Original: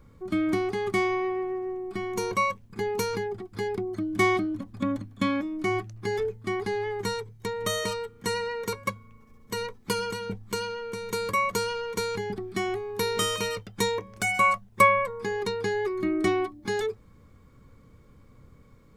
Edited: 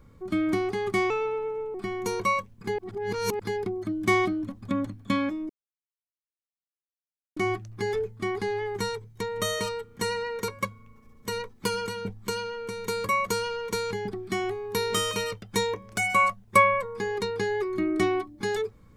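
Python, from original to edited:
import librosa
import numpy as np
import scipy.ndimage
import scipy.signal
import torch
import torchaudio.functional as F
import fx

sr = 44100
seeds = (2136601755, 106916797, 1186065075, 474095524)

y = fx.edit(x, sr, fx.speed_span(start_s=1.1, length_s=0.76, speed=1.18),
    fx.reverse_span(start_s=2.9, length_s=0.61),
    fx.insert_silence(at_s=5.61, length_s=1.87), tone=tone)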